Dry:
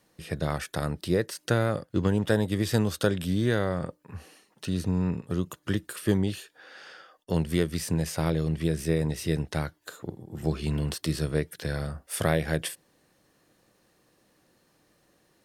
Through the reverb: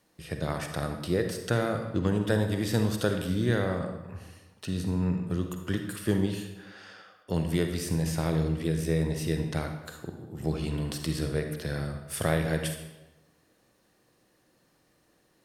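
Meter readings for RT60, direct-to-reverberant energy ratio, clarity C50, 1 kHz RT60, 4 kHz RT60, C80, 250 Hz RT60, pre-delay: 1.1 s, 5.0 dB, 6.0 dB, 1.0 s, 0.80 s, 8.5 dB, 1.2 s, 40 ms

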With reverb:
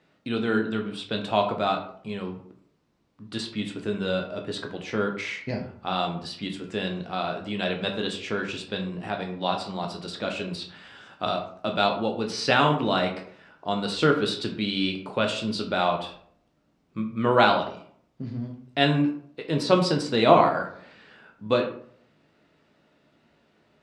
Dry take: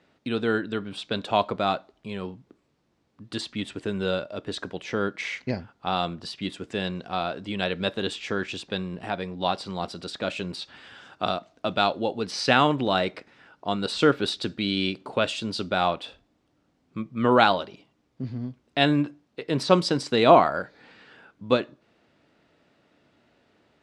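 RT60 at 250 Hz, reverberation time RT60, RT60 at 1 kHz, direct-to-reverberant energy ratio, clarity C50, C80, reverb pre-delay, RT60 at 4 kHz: 0.65 s, 0.55 s, 0.55 s, 2.5 dB, 8.5 dB, 12.5 dB, 10 ms, 0.35 s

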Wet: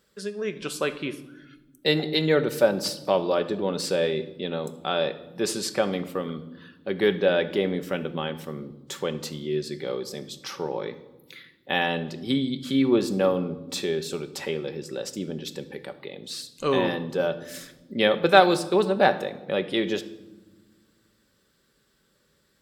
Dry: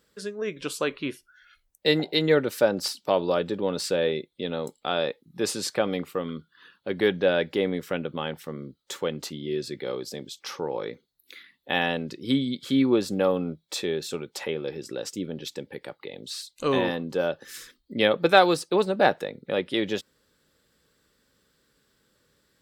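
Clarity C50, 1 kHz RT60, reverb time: 14.0 dB, 1.0 s, 1.2 s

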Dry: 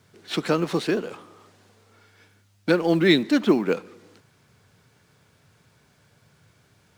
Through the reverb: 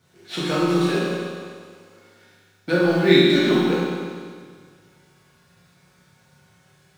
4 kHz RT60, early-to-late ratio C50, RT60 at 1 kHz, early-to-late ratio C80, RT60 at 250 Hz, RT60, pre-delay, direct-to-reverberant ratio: 1.8 s, -2.5 dB, 1.8 s, 0.0 dB, 1.8 s, 1.8 s, 5 ms, -8.5 dB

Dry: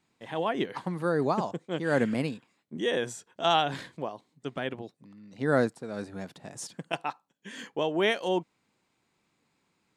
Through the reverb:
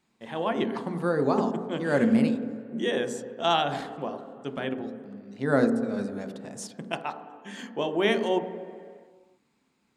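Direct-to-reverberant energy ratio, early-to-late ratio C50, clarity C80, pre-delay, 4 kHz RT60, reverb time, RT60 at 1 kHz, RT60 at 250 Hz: 7.0 dB, 9.5 dB, 11.0 dB, 3 ms, 1.6 s, 2.1 s, 2.1 s, 2.0 s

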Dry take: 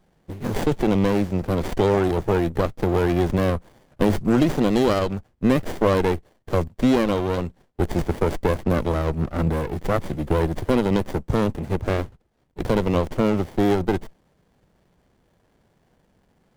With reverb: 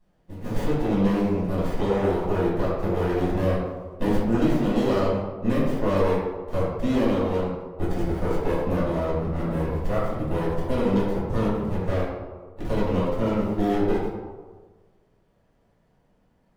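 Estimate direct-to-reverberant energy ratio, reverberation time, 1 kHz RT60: -9.0 dB, 1.5 s, 1.4 s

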